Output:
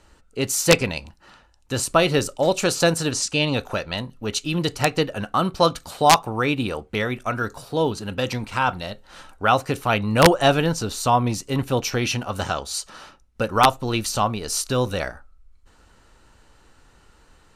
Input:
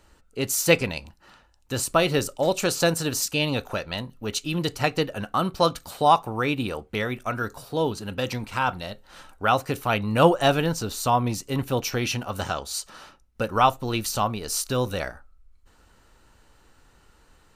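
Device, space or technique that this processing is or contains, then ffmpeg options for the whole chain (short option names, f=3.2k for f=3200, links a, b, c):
overflowing digital effects unit: -filter_complex "[0:a]asettb=1/sr,asplit=3[a][b][c];[a]atrim=end=3.114[d];[b]atrim=start=3.11:end=3.54,asetpts=PTS-STARTPTS,afade=t=in:d=0.004:c=qsin,afade=t=out:st=0.426:d=0.004:c=qsin,lowpass=f=9.1k:w=0.5412,lowpass=f=9.1k:w=1.3066[e];[c]atrim=start=3.536[f];[d][e]acrossfade=d=0.004:c1=hsin:c2=qsin[g];[g][f]acrossfade=d=0.004:c1=qsin:c2=hsin,aeval=exprs='(mod(2*val(0)+1,2)-1)/2':c=same,lowpass=11k,volume=3dB"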